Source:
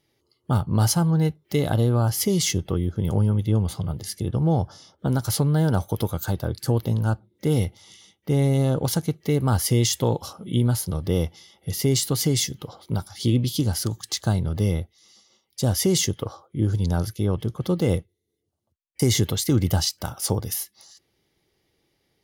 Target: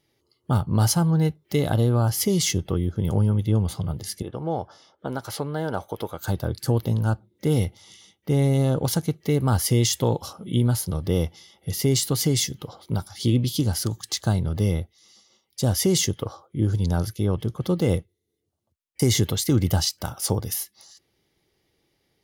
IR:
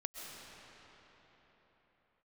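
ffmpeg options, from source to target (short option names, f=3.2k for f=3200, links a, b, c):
-filter_complex "[0:a]asettb=1/sr,asplit=3[a][b][c];[a]atrim=end=4.224[d];[b]atrim=start=4.22:end=6.24,asetpts=PTS-STARTPTS,afade=t=in:d=0.004:c=qsin,afade=t=out:st=2.016:d=0.004:c=qsin,bass=f=250:g=-14,treble=f=4k:g=-10[e];[c]atrim=start=6.236[f];[d][e]acrossfade=d=0.004:c1=hsin:c2=qsin[g];[g][f]acrossfade=d=0.004:c1=qsin:c2=hsin"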